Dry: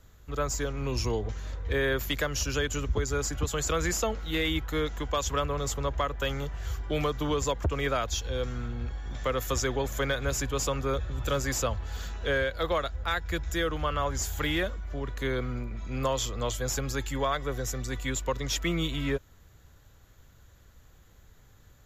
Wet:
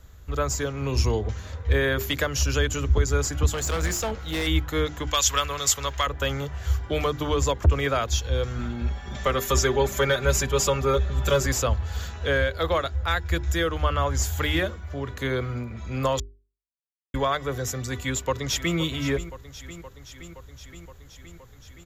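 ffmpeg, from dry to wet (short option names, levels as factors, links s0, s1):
-filter_complex "[0:a]asettb=1/sr,asplit=3[s0][s1][s2];[s0]atrim=end=3.504[s3];[s1]atrim=start=3.5:end=4.47,asetpts=PTS-STARTPTS,afade=t=in:d=0.004:c=qsin,afade=t=out:st=0.966:d=0.004:c=qsin,asoftclip=type=hard:threshold=0.0376[s4];[s2]atrim=start=4.466[s5];[s3][s4]acrossfade=d=0.004:c1=hsin:c2=qsin[s6];[s6][s5]acrossfade=d=0.004:c1=qsin:c2=hsin,asettb=1/sr,asplit=3[s7][s8][s9];[s7]atrim=end=5.074[s10];[s8]atrim=start=5.07:end=6.07,asetpts=PTS-STARTPTS,afade=t=in:d=0.004:c=qsin,afade=t=out:st=0.996:d=0.004:c=qsin,tiltshelf=f=1100:g=-10[s11];[s9]atrim=start=6.066[s12];[s10][s11]acrossfade=d=0.004:c1=hsin:c2=qsin[s13];[s13][s12]acrossfade=d=0.004:c1=qsin:c2=hsin,asettb=1/sr,asplit=3[s14][s15][s16];[s14]atrim=end=8.584[s17];[s15]atrim=start=8.58:end=11.46,asetpts=PTS-STARTPTS,afade=t=in:d=0.004:c=qsin,afade=t=out:st=2.876:d=0.004:c=qsin,aecho=1:1:5.1:0.97,atrim=end_sample=127008[s18];[s16]atrim=start=11.456[s19];[s17][s18]acrossfade=d=0.004:c1=hsin:c2=qsin[s20];[s20][s19]acrossfade=d=0.004:c1=qsin:c2=hsin,asplit=2[s21][s22];[s22]afade=t=in:st=18.03:d=0.01,afade=t=out:st=18.77:d=0.01,aecho=0:1:520|1040|1560|2080|2600|3120|3640|4160|4680|5200|5720:0.199526|0.149645|0.112234|0.0841751|0.0631313|0.0473485|0.0355114|0.0266335|0.0199752|0.0149814|0.011236[s23];[s21][s23]amix=inputs=2:normalize=0,asplit=3[s24][s25][s26];[s24]atrim=end=16.2,asetpts=PTS-STARTPTS,afade=t=out:st=16.196:d=0.004:c=hsin[s27];[s25]atrim=start=16.2:end=17.14,asetpts=PTS-STARTPTS,volume=0[s28];[s26]atrim=start=17.14,asetpts=PTS-STARTPTS,afade=t=in:d=0.004:c=hsin[s29];[s27][s28][s29]concat=n=3:v=0:a=1,equalizer=f=70:w=1.6:g=9,bandreject=f=50:t=h:w=6,bandreject=f=100:t=h:w=6,bandreject=f=150:t=h:w=6,bandreject=f=200:t=h:w=6,bandreject=f=250:t=h:w=6,bandreject=f=300:t=h:w=6,bandreject=f=350:t=h:w=6,bandreject=f=400:t=h:w=6,volume=1.58"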